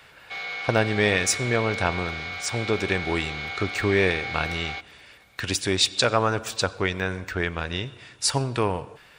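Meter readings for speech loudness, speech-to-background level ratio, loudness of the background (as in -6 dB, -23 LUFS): -25.5 LUFS, 6.0 dB, -31.5 LUFS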